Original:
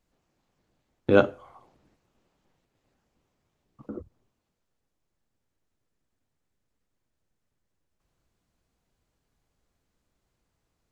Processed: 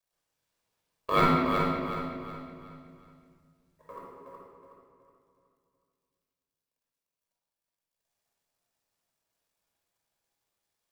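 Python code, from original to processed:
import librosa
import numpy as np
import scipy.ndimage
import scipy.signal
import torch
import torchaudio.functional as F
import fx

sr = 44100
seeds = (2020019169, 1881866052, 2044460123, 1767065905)

p1 = fx.law_mismatch(x, sr, coded='A')
p2 = scipy.signal.sosfilt(scipy.signal.butter(2, 41.0, 'highpass', fs=sr, output='sos'), p1)
p3 = fx.high_shelf(p2, sr, hz=2700.0, db=11.0)
p4 = p3 * np.sin(2.0 * np.pi * 760.0 * np.arange(len(p3)) / sr)
p5 = p4 + fx.echo_feedback(p4, sr, ms=370, feedback_pct=38, wet_db=-6, dry=0)
p6 = fx.room_shoebox(p5, sr, seeds[0], volume_m3=2500.0, walls='mixed', distance_m=5.6)
y = F.gain(torch.from_numpy(p6), -9.0).numpy()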